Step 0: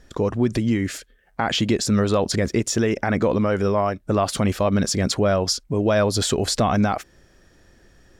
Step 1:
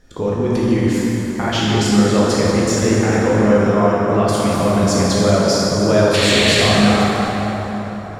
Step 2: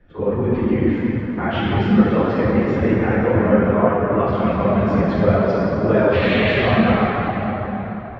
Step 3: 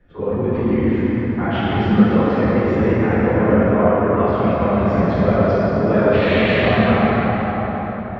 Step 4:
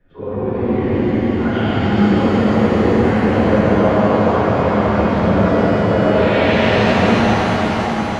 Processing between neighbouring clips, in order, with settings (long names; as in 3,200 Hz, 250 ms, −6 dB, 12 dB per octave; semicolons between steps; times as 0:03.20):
sound drawn into the spectrogram noise, 0:06.13–0:06.61, 1,600–4,500 Hz −21 dBFS; dense smooth reverb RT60 4.6 s, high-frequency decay 0.55×, DRR −7.5 dB; level −2.5 dB
random phases in long frames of 50 ms; low-pass filter 2,600 Hz 24 dB per octave; level −2 dB
dense smooth reverb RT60 2.8 s, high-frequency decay 0.65×, DRR 0.5 dB; level −2 dB
reverb with rising layers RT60 3.8 s, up +7 semitones, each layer −8 dB, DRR −4.5 dB; level −4.5 dB